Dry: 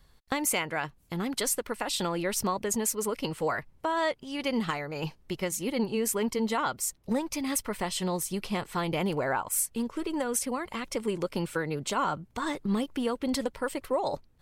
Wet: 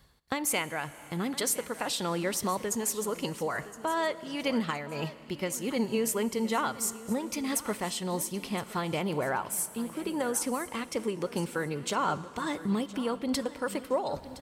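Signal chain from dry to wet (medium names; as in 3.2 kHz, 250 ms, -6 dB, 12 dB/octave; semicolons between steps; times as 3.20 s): high-pass 57 Hz; reverse; upward compressor, threshold -35 dBFS; reverse; feedback delay 1016 ms, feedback 31%, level -16.5 dB; Schroeder reverb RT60 3.4 s, combs from 27 ms, DRR 15.5 dB; random flutter of the level, depth 50%; trim +1.5 dB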